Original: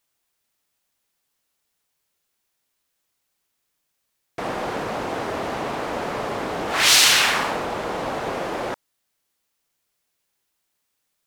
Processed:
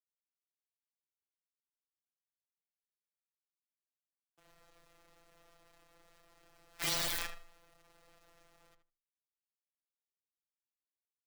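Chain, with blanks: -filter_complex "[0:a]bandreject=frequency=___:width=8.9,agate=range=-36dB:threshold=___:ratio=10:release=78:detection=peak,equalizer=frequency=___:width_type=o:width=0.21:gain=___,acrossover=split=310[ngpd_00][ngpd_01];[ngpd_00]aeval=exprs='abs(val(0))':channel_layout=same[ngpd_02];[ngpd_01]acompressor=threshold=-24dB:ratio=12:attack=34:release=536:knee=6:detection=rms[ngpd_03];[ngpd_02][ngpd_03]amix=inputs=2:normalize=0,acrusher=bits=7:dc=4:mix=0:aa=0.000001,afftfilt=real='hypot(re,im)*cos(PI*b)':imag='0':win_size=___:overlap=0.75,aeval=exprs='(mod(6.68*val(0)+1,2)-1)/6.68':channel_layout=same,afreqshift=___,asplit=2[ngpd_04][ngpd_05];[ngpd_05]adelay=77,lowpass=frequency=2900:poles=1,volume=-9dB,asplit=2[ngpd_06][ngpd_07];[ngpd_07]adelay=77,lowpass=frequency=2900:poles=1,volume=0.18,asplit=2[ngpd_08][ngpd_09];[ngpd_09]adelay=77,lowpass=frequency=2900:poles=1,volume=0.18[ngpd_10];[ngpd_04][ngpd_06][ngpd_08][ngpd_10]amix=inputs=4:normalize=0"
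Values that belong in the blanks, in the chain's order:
2900, -17dB, 260, 7.5, 1024, -13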